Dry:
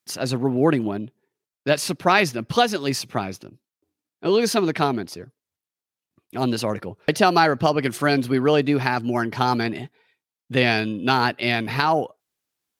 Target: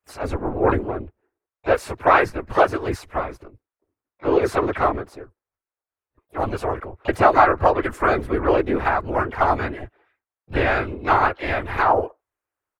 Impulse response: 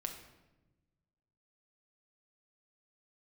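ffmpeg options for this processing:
-filter_complex "[0:a]afftfilt=real='hypot(re,im)*cos(2*PI*random(0))':imag='hypot(re,im)*sin(2*PI*random(1))':win_size=512:overlap=0.75,firequalizer=gain_entry='entry(110,0);entry(160,-19);entry(390,-2);entry(1300,2);entry(3800,-19);entry(8300,-14)':delay=0.05:min_phase=1,asplit=3[link_01][link_02][link_03];[link_02]asetrate=37084,aresample=44100,atempo=1.18921,volume=-1dB[link_04];[link_03]asetrate=66075,aresample=44100,atempo=0.66742,volume=-13dB[link_05];[link_01][link_04][link_05]amix=inputs=3:normalize=0,volume=6.5dB"

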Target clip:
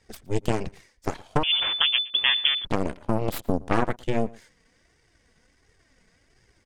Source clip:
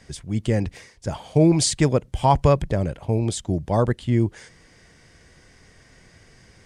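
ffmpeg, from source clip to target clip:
ffmpeg -i in.wav -filter_complex "[0:a]acompressor=threshold=-19dB:ratio=20,flanger=delay=2.1:depth=2.6:regen=20:speed=1.4:shape=triangular,aeval=exprs='0.15*(cos(1*acos(clip(val(0)/0.15,-1,1)))-cos(1*PI/2))+0.0596*(cos(3*acos(clip(val(0)/0.15,-1,1)))-cos(3*PI/2))+0.0422*(cos(4*acos(clip(val(0)/0.15,-1,1)))-cos(4*PI/2))':channel_layout=same,asplit=2[link_01][link_02];[link_02]adelay=116.6,volume=-23dB,highshelf=frequency=4000:gain=-2.62[link_03];[link_01][link_03]amix=inputs=2:normalize=0,asettb=1/sr,asplit=3[link_04][link_05][link_06];[link_04]atrim=end=1.434[link_07];[link_05]atrim=start=1.43:end=2.65,asetpts=PTS-STARTPTS,afade=type=in:duration=0.004:curve=qsin,afade=type=out:start_time=1.216:duration=0.004:curve=qsin,lowpass=frequency=3000:width_type=q:width=0.5098,lowpass=frequency=3000:width_type=q:width=0.6013,lowpass=frequency=3000:width_type=q:width=0.9,lowpass=frequency=3000:width_type=q:width=2.563,afreqshift=-3500[link_08];[link_06]atrim=start=2.646[link_09];[link_07][link_08]acrossfade=duration=0.004:curve1=hsin:curve2=qsin[link_10];[link_10][link_09]acrossfade=duration=0.004:curve1=qsin:curve2=hsin,volume=7dB" out.wav

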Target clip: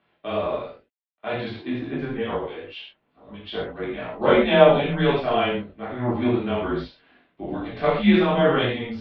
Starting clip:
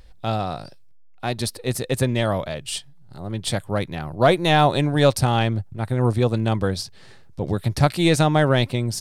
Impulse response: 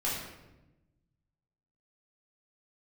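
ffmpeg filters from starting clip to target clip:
-filter_complex "[0:a]agate=range=-6dB:threshold=-35dB:ratio=16:detection=peak,asettb=1/sr,asplit=3[link_01][link_02][link_03];[link_01]atrim=end=1.684[link_04];[link_02]atrim=start=1.68:end=3.83,asetpts=PTS-STARTPTS,afade=type=in:duration=0.004:curve=qsin,afade=type=out:start_time=2.146:duration=0.004:curve=qsin,acrossover=split=2100[link_05][link_06];[link_05]aeval=exprs='val(0)*(1-1/2+1/2*cos(2*PI*8*n/s))':channel_layout=same[link_07];[link_06]aeval=exprs='val(0)*(1-1/2-1/2*cos(2*PI*8*n/s))':channel_layout=same[link_08];[link_07][link_08]amix=inputs=2:normalize=0[link_09];[link_03]atrim=start=3.826[link_10];[link_04][link_09]acrossfade=duration=0.004:curve1=hsin:curve2=qsin[link_11];[link_11][link_10]acrossfade=duration=0.004:curve1=qsin:curve2=hsin,flanger=delay=19.5:depth=2.8:speed=2.2,acrusher=bits=10:mix=0:aa=0.000001[link_12];[1:a]atrim=start_sample=2205,atrim=end_sample=6174[link_13];[link_12][link_13]afir=irnorm=-1:irlink=0,highpass=frequency=300:width_type=q:width=0.5412,highpass=frequency=300:width_type=q:width=1.307,lowpass=frequency=3400:width_type=q:width=0.5176,lowpass=frequency=3400:width_type=q:width=0.7071,lowpass=frequency=3400:width_type=q:width=1.932,afreqshift=-130,volume=-2dB"

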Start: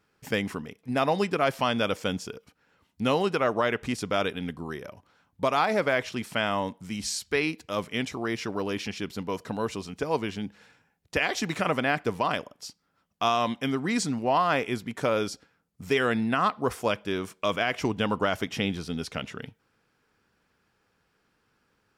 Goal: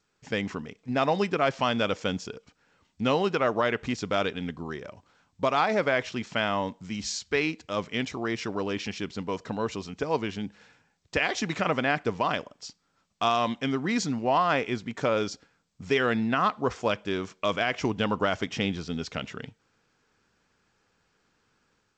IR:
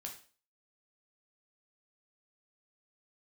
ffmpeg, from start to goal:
-af "dynaudnorm=framelen=220:gausssize=3:maxgain=5.5dB,volume=-5.5dB" -ar 16000 -c:a g722

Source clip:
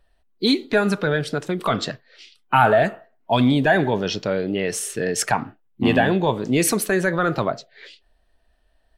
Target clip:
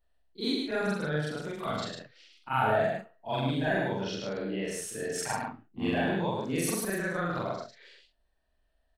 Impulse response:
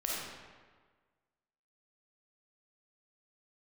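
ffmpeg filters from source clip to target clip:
-af "afftfilt=real='re':imag='-im':win_size=4096:overlap=0.75,aecho=1:1:105:0.631,volume=-7.5dB"

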